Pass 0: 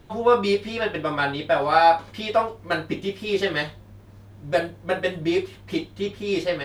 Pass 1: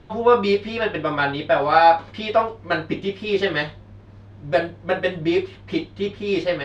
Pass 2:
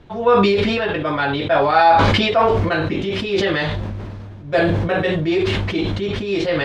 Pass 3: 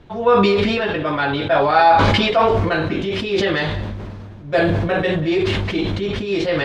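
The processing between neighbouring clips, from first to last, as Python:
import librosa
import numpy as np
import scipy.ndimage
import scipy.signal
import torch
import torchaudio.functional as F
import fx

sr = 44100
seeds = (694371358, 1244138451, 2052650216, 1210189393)

y1 = scipy.signal.sosfilt(scipy.signal.butter(2, 4400.0, 'lowpass', fs=sr, output='sos'), x)
y1 = F.gain(torch.from_numpy(y1), 2.5).numpy()
y2 = fx.sustainer(y1, sr, db_per_s=21.0)
y3 = y2 + 10.0 ** (-16.0 / 20.0) * np.pad(y2, (int(185 * sr / 1000.0), 0))[:len(y2)]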